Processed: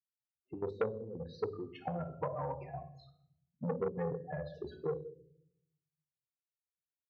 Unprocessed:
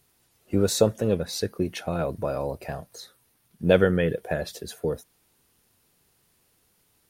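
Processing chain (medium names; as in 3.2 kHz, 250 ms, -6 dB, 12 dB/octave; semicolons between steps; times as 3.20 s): expander on every frequency bin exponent 1.5; gate -53 dBFS, range -9 dB; spectral gate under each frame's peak -10 dB strong; dynamic bell 820 Hz, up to -5 dB, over -37 dBFS, Q 1; compression 4:1, threshold -39 dBFS, peak gain reduction 17.5 dB; trance gate ".xxxxx.x.xx." 170 bpm -12 dB; cabinet simulation 170–2100 Hz, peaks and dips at 200 Hz -9 dB, 630 Hz -9 dB, 900 Hz +4 dB, 1.9 kHz -9 dB; simulated room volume 140 m³, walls mixed, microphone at 0.51 m; transformer saturation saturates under 740 Hz; trim +9.5 dB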